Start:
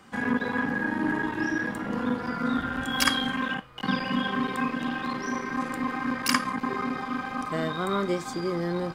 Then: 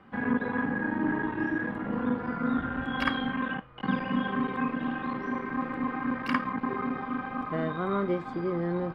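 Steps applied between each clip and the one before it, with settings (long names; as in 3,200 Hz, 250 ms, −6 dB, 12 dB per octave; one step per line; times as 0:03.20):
high-frequency loss of the air 490 metres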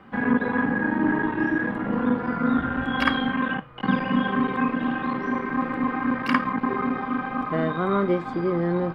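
mains-hum notches 50/100/150 Hz
level +6 dB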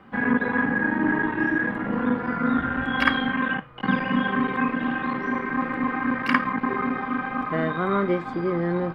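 dynamic equaliser 1,900 Hz, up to +5 dB, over −39 dBFS, Q 1.5
level −1 dB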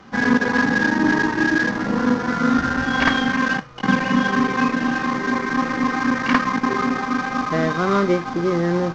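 variable-slope delta modulation 32 kbit/s
level +5 dB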